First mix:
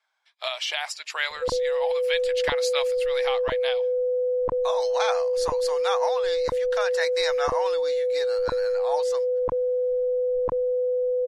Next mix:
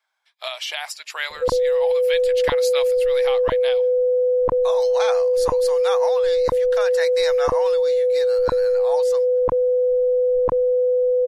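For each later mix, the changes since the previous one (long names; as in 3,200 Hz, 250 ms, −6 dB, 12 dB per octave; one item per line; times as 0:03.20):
background +6.0 dB
master: remove low-pass filter 8,400 Hz 12 dB per octave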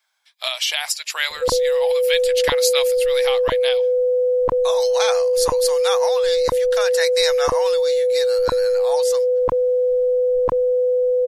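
master: add high-shelf EQ 2,700 Hz +12 dB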